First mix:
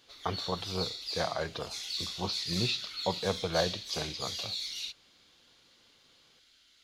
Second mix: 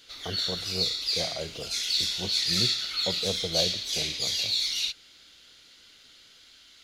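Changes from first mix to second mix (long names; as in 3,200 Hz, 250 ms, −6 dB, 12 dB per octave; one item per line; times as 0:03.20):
speech: add flat-topped bell 1,700 Hz −12 dB 2.3 octaves
background +9.5 dB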